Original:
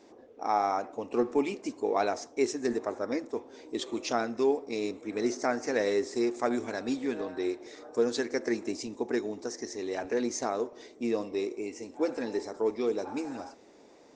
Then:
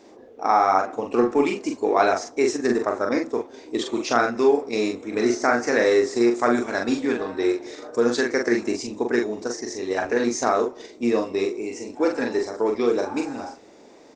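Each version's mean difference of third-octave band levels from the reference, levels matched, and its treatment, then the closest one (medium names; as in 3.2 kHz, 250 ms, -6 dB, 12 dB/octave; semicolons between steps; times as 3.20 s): 2.0 dB: dynamic bell 1.4 kHz, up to +6 dB, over -46 dBFS, Q 1.4; in parallel at -1 dB: level held to a coarse grid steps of 16 dB; on the sum: doubling 42 ms -4 dB; trim +3 dB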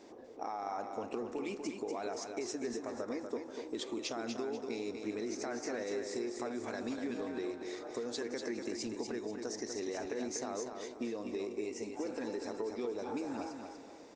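6.0 dB: peak limiter -24.5 dBFS, peak gain reduction 11 dB; compression, threshold -37 dBFS, peak gain reduction 8.5 dB; feedback delay 243 ms, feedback 34%, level -6 dB; trim +1 dB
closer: first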